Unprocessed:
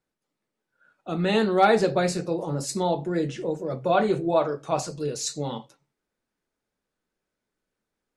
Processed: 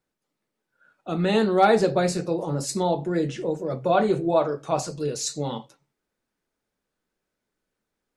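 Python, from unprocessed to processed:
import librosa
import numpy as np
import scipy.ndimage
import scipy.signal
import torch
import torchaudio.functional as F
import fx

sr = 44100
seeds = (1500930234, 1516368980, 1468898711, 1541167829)

y = fx.dynamic_eq(x, sr, hz=2300.0, q=0.72, threshold_db=-34.0, ratio=4.0, max_db=-3)
y = y * 10.0 ** (1.5 / 20.0)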